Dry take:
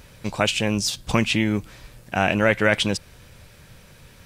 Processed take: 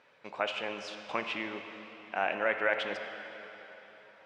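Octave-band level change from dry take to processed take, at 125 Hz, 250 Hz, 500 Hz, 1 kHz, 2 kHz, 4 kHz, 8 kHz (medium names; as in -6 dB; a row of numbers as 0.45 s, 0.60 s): -30.5 dB, -20.0 dB, -9.5 dB, -7.5 dB, -9.0 dB, -14.5 dB, under -25 dB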